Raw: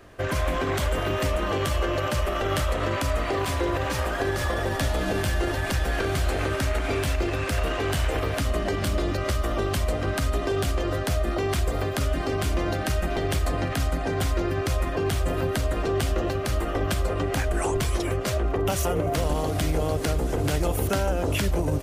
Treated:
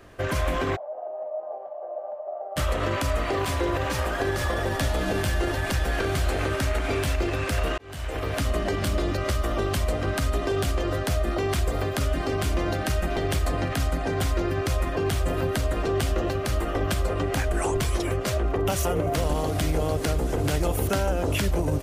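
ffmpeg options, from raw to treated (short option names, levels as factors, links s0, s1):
-filter_complex "[0:a]asplit=3[s0][s1][s2];[s0]afade=t=out:st=0.75:d=0.02[s3];[s1]asuperpass=centerf=680:order=4:qfactor=3.4,afade=t=in:st=0.75:d=0.02,afade=t=out:st=2.56:d=0.02[s4];[s2]afade=t=in:st=2.56:d=0.02[s5];[s3][s4][s5]amix=inputs=3:normalize=0,asplit=2[s6][s7];[s6]atrim=end=7.78,asetpts=PTS-STARTPTS,afade=t=out:st=7.776:d=0.004:c=hsin[s8];[s7]atrim=start=7.78,asetpts=PTS-STARTPTS,afade=t=in:d=0.62[s9];[s8][s9]concat=n=2:v=0:a=1"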